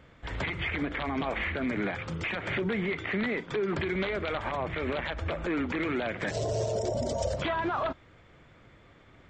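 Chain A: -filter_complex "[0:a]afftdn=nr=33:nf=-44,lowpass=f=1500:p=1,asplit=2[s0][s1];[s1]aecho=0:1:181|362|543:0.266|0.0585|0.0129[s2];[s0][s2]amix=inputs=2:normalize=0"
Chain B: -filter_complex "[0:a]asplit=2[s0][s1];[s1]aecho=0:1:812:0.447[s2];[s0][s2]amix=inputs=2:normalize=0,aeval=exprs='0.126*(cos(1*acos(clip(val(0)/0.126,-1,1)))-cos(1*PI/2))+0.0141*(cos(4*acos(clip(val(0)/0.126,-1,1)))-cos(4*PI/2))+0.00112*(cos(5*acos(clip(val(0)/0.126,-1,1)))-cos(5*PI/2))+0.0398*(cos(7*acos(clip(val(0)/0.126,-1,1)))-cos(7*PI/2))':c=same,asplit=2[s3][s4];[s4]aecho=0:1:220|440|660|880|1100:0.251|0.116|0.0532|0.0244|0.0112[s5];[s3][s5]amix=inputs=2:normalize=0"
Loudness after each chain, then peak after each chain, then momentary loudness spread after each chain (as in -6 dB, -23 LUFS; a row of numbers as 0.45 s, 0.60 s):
-32.5 LUFS, -30.0 LUFS; -19.5 dBFS, -14.5 dBFS; 5 LU, 9 LU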